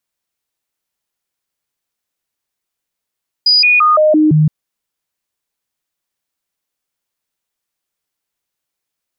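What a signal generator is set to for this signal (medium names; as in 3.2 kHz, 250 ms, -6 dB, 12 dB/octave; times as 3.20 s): stepped sine 4.92 kHz down, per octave 1, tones 6, 0.17 s, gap 0.00 s -6.5 dBFS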